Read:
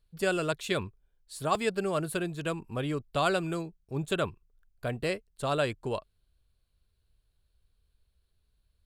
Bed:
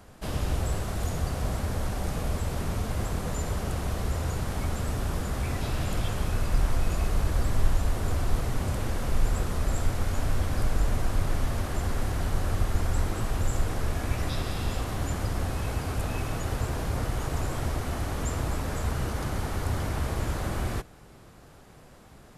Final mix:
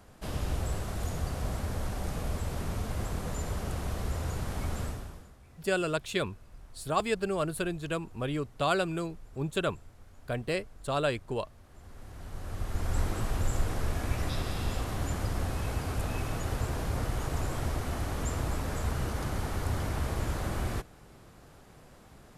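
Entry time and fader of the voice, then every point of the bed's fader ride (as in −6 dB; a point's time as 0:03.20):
5.45 s, −0.5 dB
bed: 0:04.84 −4 dB
0:05.38 −26.5 dB
0:11.60 −26.5 dB
0:12.98 −2.5 dB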